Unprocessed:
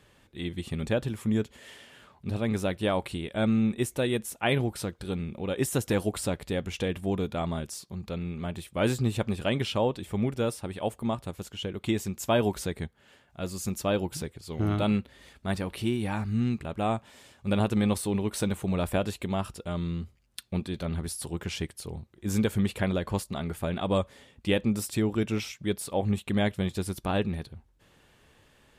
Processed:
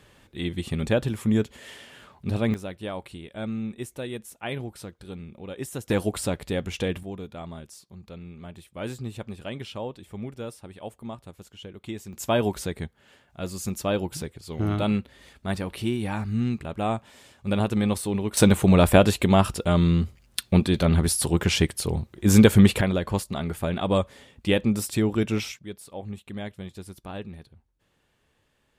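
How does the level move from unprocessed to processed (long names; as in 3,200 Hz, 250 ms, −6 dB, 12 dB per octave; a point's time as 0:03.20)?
+4.5 dB
from 0:02.54 −6.5 dB
from 0:05.90 +2.5 dB
from 0:07.03 −7.5 dB
from 0:12.13 +1.5 dB
from 0:18.37 +11.5 dB
from 0:22.81 +3.5 dB
from 0:25.59 −9 dB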